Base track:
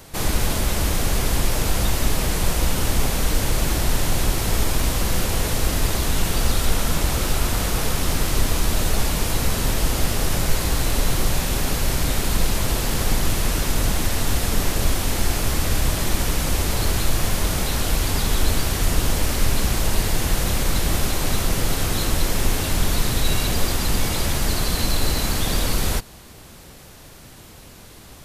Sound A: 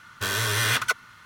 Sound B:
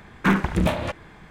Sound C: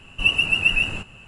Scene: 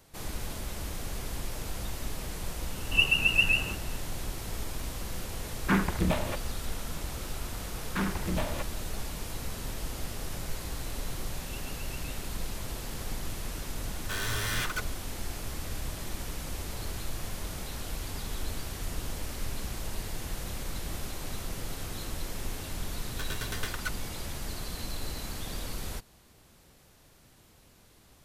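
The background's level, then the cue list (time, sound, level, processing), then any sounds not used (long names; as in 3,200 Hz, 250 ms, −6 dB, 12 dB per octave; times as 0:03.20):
base track −15.5 dB
0:02.73: mix in C −5 dB
0:05.44: mix in B −6.5 dB
0:07.71: mix in B −15.5 dB + leveller curve on the samples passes 2
0:11.28: mix in C −18 dB + downward compressor 2 to 1, threshold −39 dBFS
0:13.88: mix in A −16.5 dB + leveller curve on the samples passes 3
0:22.97: mix in A −7.5 dB + tremolo with a ramp in dB decaying 9.1 Hz, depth 24 dB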